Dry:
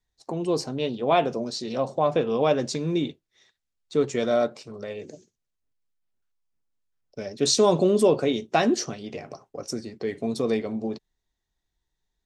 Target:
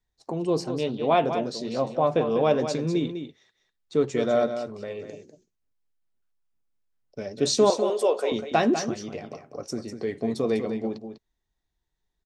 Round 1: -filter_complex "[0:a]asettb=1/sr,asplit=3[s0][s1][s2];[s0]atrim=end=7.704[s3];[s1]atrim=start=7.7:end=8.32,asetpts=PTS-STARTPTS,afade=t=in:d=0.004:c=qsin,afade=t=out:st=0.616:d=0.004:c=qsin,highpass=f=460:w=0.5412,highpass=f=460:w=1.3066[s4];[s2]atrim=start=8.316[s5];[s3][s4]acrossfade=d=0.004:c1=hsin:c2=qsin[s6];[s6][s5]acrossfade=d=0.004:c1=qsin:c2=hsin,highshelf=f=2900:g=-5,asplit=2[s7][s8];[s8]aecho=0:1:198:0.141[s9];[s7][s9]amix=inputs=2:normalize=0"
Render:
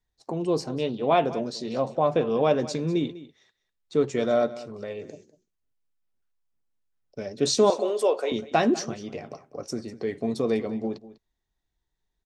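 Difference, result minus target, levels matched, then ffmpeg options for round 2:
echo-to-direct -8 dB
-filter_complex "[0:a]asettb=1/sr,asplit=3[s0][s1][s2];[s0]atrim=end=7.704[s3];[s1]atrim=start=7.7:end=8.32,asetpts=PTS-STARTPTS,afade=t=in:d=0.004:c=qsin,afade=t=out:st=0.616:d=0.004:c=qsin,highpass=f=460:w=0.5412,highpass=f=460:w=1.3066[s4];[s2]atrim=start=8.316[s5];[s3][s4]acrossfade=d=0.004:c1=hsin:c2=qsin[s6];[s6][s5]acrossfade=d=0.004:c1=qsin:c2=hsin,highshelf=f=2900:g=-5,asplit=2[s7][s8];[s8]aecho=0:1:198:0.355[s9];[s7][s9]amix=inputs=2:normalize=0"

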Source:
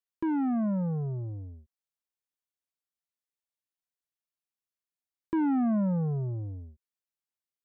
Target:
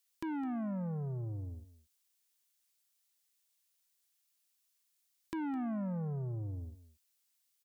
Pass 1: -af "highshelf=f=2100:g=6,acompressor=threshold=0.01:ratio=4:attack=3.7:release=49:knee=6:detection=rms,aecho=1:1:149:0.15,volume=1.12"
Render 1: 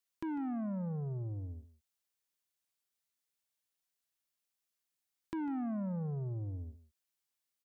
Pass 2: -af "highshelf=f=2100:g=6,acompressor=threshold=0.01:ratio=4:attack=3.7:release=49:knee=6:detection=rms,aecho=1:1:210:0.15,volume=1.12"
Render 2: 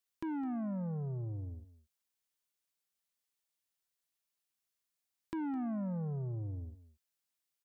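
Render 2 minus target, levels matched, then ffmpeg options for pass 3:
4 kHz band -5.5 dB
-af "highshelf=f=2100:g=16.5,acompressor=threshold=0.01:ratio=4:attack=3.7:release=49:knee=6:detection=rms,aecho=1:1:210:0.15,volume=1.12"

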